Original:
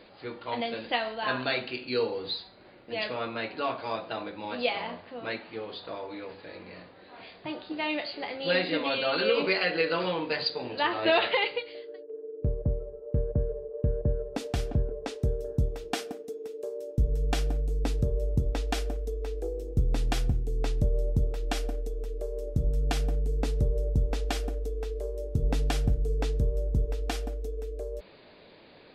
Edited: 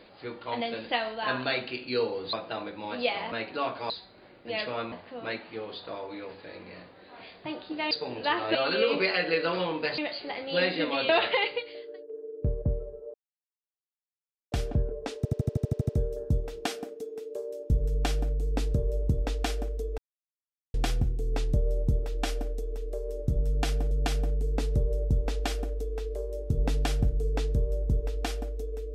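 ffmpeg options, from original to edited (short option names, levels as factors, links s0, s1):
-filter_complex "[0:a]asplit=23[s0][s1][s2][s3][s4][s5][s6][s7][s8][s9][s10][s11][s12][s13][s14][s15][s16][s17][s18][s19][s20][s21][s22];[s0]atrim=end=2.332[s23];[s1]atrim=start=3.928:end=4.922[s24];[s2]atrim=start=3.348:end=3.932[s25];[s3]atrim=start=2.328:end=3.352[s26];[s4]atrim=start=4.918:end=7.912[s27];[s5]atrim=start=10.448:end=11.092[s28];[s6]atrim=start=9.018:end=10.452[s29];[s7]atrim=start=7.908:end=9.022[s30];[s8]atrim=start=11.088:end=13.14,asetpts=PTS-STARTPTS,afade=t=out:st=2.048:d=0.004:c=hsin[s31];[s9]atrim=start=13.14:end=14.52,asetpts=PTS-STARTPTS,volume=0[s32];[s10]atrim=start=14.52:end=15.252,asetpts=PTS-STARTPTS,afade=t=in:d=0.004:c=hsin[s33];[s11]atrim=start=15.168:end=15.252[s34];[s12]atrim=start=15.168:end=15.252[s35];[s13]atrim=start=15.168:end=15.252[s36];[s14]atrim=start=15.168:end=15.252[s37];[s15]atrim=start=15.168:end=15.252[s38];[s16]atrim=start=15.168:end=15.252[s39];[s17]atrim=start=15.168:end=15.252[s40];[s18]atrim=start=15.168:end=15.252[s41];[s19]atrim=start=15.168:end=19.26,asetpts=PTS-STARTPTS,afade=t=out:st=4.088:d=0.004:c=hsin[s42];[s20]atrim=start=19.26:end=20.02,asetpts=PTS-STARTPTS,volume=0[s43];[s21]atrim=start=20.02:end=23.192,asetpts=PTS-STARTPTS,afade=t=in:d=0.004:c=hsin[s44];[s22]atrim=start=22.758[s45];[s23][s24]acrossfade=d=0.004:c1=hsin:c2=hsin[s46];[s46][s25]acrossfade=d=0.004:c1=hsin:c2=hsin[s47];[s47][s26]acrossfade=d=0.004:c1=hsin:c2=hsin[s48];[s48][s27]acrossfade=d=0.004:c1=hsin:c2=hsin[s49];[s49][s28]acrossfade=d=0.004:c1=hsin:c2=hsin[s50];[s50][s29]acrossfade=d=0.004:c1=hsin:c2=hsin[s51];[s51][s30]acrossfade=d=0.004:c1=hsin:c2=hsin[s52];[s31][s32][s33]concat=n=3:v=0:a=1[s53];[s52][s53]acrossfade=d=0.004:c1=hsin:c2=hsin[s54];[s54][s34]acrossfade=d=0.004:c1=hsin:c2=hsin[s55];[s55][s35]acrossfade=d=0.004:c1=hsin:c2=hsin[s56];[s56][s36]acrossfade=d=0.004:c1=hsin:c2=hsin[s57];[s57][s37]acrossfade=d=0.004:c1=hsin:c2=hsin[s58];[s58][s38]acrossfade=d=0.004:c1=hsin:c2=hsin[s59];[s59][s39]acrossfade=d=0.004:c1=hsin:c2=hsin[s60];[s60][s40]acrossfade=d=0.004:c1=hsin:c2=hsin[s61];[s61][s41]acrossfade=d=0.004:c1=hsin:c2=hsin[s62];[s42][s43][s44]concat=n=3:v=0:a=1[s63];[s62][s63]acrossfade=d=0.004:c1=hsin:c2=hsin[s64];[s64][s45]acrossfade=d=0.004:c1=hsin:c2=hsin"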